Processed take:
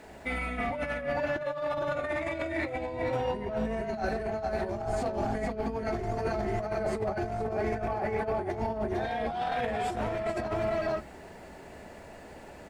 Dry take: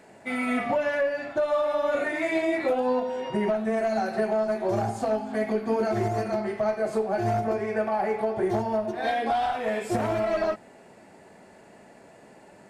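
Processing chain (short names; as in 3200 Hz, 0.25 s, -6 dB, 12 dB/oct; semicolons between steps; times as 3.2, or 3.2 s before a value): octaver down 2 oct, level -2 dB; bell 6000 Hz +5 dB 2.9 oct; echo 0.447 s -4.5 dB; added noise pink -59 dBFS; negative-ratio compressor -27 dBFS, ratio -0.5; limiter -19.5 dBFS, peak gain reduction 6 dB; high shelf 3900 Hz -8.5 dB; notches 50/100/150/200/250 Hz; gain -1.5 dB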